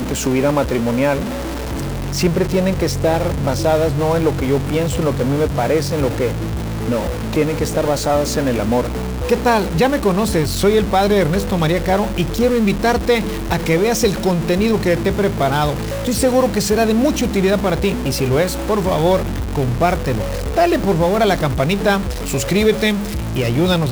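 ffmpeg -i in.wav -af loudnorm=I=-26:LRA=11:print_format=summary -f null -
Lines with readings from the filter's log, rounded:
Input Integrated:    -17.4 LUFS
Input True Peak:      -3.2 dBTP
Input LRA:             2.3 LU
Input Threshold:     -27.4 LUFS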